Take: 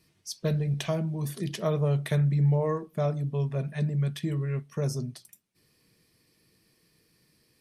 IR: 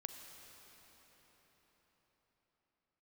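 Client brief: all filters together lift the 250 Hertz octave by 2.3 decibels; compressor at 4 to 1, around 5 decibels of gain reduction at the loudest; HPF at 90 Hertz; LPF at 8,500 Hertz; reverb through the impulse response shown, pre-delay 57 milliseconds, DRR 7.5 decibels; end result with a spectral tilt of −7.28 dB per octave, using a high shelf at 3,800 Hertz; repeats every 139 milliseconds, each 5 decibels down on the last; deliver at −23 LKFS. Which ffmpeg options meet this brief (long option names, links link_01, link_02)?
-filter_complex "[0:a]highpass=90,lowpass=8500,equalizer=frequency=250:width_type=o:gain=6.5,highshelf=frequency=3800:gain=5,acompressor=threshold=-25dB:ratio=4,aecho=1:1:139|278|417|556|695|834|973:0.562|0.315|0.176|0.0988|0.0553|0.031|0.0173,asplit=2[link_01][link_02];[1:a]atrim=start_sample=2205,adelay=57[link_03];[link_02][link_03]afir=irnorm=-1:irlink=0,volume=-4.5dB[link_04];[link_01][link_04]amix=inputs=2:normalize=0,volume=5dB"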